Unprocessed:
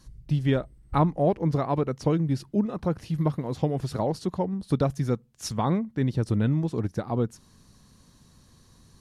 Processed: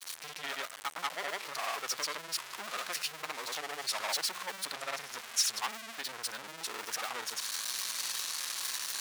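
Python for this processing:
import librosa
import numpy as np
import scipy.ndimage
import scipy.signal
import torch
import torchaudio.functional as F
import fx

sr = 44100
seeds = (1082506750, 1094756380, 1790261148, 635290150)

p1 = x + 0.5 * 10.0 ** (-33.5 / 20.0) * np.sign(x)
p2 = fx.granulator(p1, sr, seeds[0], grain_ms=100.0, per_s=20.0, spray_ms=100.0, spread_st=0)
p3 = fx.rider(p2, sr, range_db=4, speed_s=0.5)
p4 = p2 + (p3 * 10.0 ** (2.0 / 20.0))
p5 = 10.0 ** (-20.0 / 20.0) * np.tanh(p4 / 10.0 ** (-20.0 / 20.0))
y = scipy.signal.sosfilt(scipy.signal.butter(2, 1500.0, 'highpass', fs=sr, output='sos'), p5)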